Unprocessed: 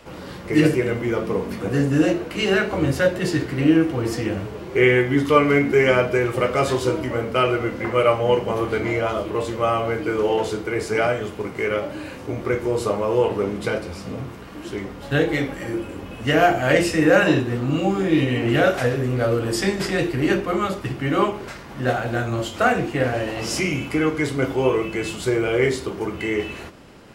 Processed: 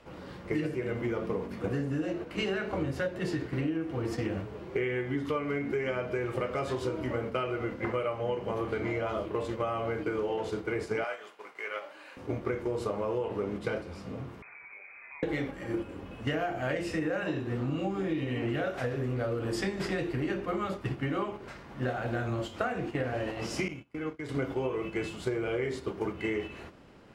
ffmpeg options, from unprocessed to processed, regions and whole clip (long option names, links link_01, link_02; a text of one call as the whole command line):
ffmpeg -i in.wav -filter_complex "[0:a]asettb=1/sr,asplit=3[link_01][link_02][link_03];[link_01]atrim=end=11.044[link_04];[link_02]atrim=start=11.04:end=12.17,asetpts=PTS-STARTPTS,afade=type=in:duration=0.004:curve=qsin,afade=type=out:start_time=1.126:duration=0.004:curve=qsin,highpass=840,agate=range=-33dB:threshold=-40dB:ratio=3:release=100:detection=peak[link_05];[link_03]atrim=start=12.166[link_06];[link_04][link_05]acrossfade=duration=0.004:curve1=hsin:curve2=qsin[link_07];[link_07][link_06]acrossfade=duration=0.004:curve1=qsin:curve2=hsin,asettb=1/sr,asplit=3[link_08][link_09][link_10];[link_08]atrim=end=14.424[link_11];[link_09]atrim=start=14.42:end=15.23,asetpts=PTS-STARTPTS,afade=type=in:duration=0.004:curve=qsin,afade=type=out:start_time=0.806:duration=0.004:curve=qsin,acompressor=threshold=-35dB:ratio=6:attack=3.2:release=140:knee=1:detection=peak,lowpass=frequency=2200:width_type=q:width=0.5098,lowpass=frequency=2200:width_type=q:width=0.6013,lowpass=frequency=2200:width_type=q:width=0.9,lowpass=frequency=2200:width_type=q:width=2.563,afreqshift=-2600[link_12];[link_10]atrim=start=15.226[link_13];[link_11][link_12]acrossfade=duration=0.004:curve1=hsin:curve2=qsin[link_14];[link_14][link_13]acrossfade=duration=0.004:curve1=qsin:curve2=hsin,asettb=1/sr,asplit=3[link_15][link_16][link_17];[link_15]atrim=end=23.684[link_18];[link_16]atrim=start=23.68:end=24.29,asetpts=PTS-STARTPTS,afade=type=in:duration=0.004:curve=qsin,afade=type=out:start_time=0.606:duration=0.004:curve=qsin,agate=range=-30dB:threshold=-25dB:ratio=16:release=100:detection=peak,acompressor=threshold=-31dB:ratio=2:attack=3.2:release=140:knee=1:detection=peak[link_19];[link_17]atrim=start=24.286[link_20];[link_18][link_19]acrossfade=duration=0.004:curve1=hsin:curve2=qsin[link_21];[link_21][link_20]acrossfade=duration=0.004:curve1=qsin:curve2=hsin,aemphasis=mode=reproduction:type=cd,agate=range=-7dB:threshold=-26dB:ratio=16:detection=peak,acompressor=threshold=-26dB:ratio=12,volume=-2dB" out.wav